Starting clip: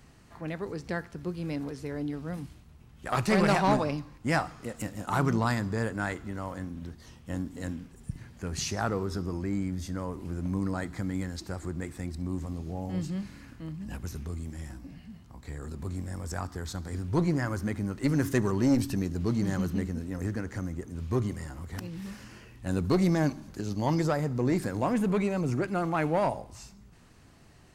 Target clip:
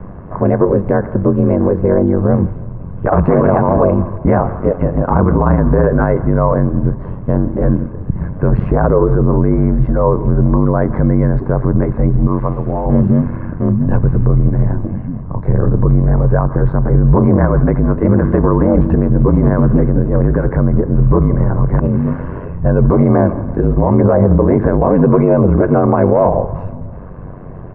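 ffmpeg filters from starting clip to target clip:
ffmpeg -i in.wav -filter_complex "[0:a]aecho=1:1:1.9:0.45,acrossover=split=590|2200|5600[link_01][link_02][link_03][link_04];[link_01]acompressor=threshold=-31dB:ratio=4[link_05];[link_02]acompressor=threshold=-35dB:ratio=4[link_06];[link_03]acompressor=threshold=-47dB:ratio=4[link_07];[link_04]acompressor=threshold=-55dB:ratio=4[link_08];[link_05][link_06][link_07][link_08]amix=inputs=4:normalize=0,aeval=exprs='val(0)*sin(2*PI*47*n/s)':channel_layout=same,asettb=1/sr,asplit=3[link_09][link_10][link_11];[link_09]atrim=end=12.274[link_12];[link_10]atrim=start=12.27:end=12.86,asetpts=PTS-STARTPTS,afade=type=in:duration=0.004:curve=qsin,afade=type=out:start_time=0.586:duration=0.004:curve=qsin,tiltshelf=frequency=760:gain=-8.5[link_13];[link_11]atrim=start=12.856[link_14];[link_12][link_13]acrossfade=duration=0.004:curve1=hsin:curve2=qsin[link_15];[link_15][link_14]acrossfade=duration=0.004:curve1=qsin:curve2=hsin,acrossover=split=570|1200[link_16][link_17][link_18];[link_18]acrusher=bits=2:mix=0:aa=0.5[link_19];[link_16][link_17][link_19]amix=inputs=3:normalize=0,aecho=1:1:166|332|498|664:0.0631|0.0372|0.022|0.013,alimiter=level_in=30dB:limit=-1dB:release=50:level=0:latency=1,volume=-1dB" out.wav

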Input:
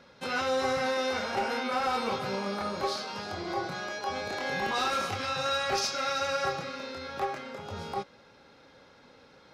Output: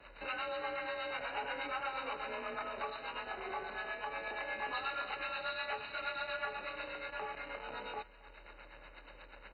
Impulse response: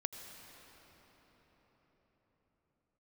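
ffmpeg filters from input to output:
-filter_complex "[0:a]highpass=350,acompressor=threshold=-49dB:ratio=2.5,crystalizer=i=4:c=0,asoftclip=type=hard:threshold=-35dB,acrossover=split=530[link_01][link_02];[link_01]aeval=exprs='val(0)*(1-0.7/2+0.7/2*cos(2*PI*8.3*n/s))':channel_layout=same[link_03];[link_02]aeval=exprs='val(0)*(1-0.7/2-0.7/2*cos(2*PI*8.3*n/s))':channel_layout=same[link_04];[link_03][link_04]amix=inputs=2:normalize=0,aecho=1:1:274|548|822:0.188|0.0697|0.0258,acrusher=bits=9:dc=4:mix=0:aa=0.000001,afreqshift=39,aresample=8000,aresample=44100,volume=6.5dB" -ar 48000 -c:a mp2 -b:a 32k

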